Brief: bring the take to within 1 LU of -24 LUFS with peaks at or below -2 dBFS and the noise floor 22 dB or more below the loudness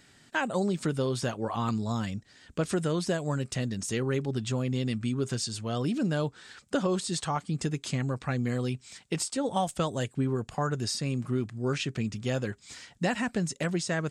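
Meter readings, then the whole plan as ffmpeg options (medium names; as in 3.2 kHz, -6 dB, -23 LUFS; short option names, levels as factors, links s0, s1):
loudness -31.0 LUFS; peak level -15.5 dBFS; loudness target -24.0 LUFS
-> -af "volume=2.24"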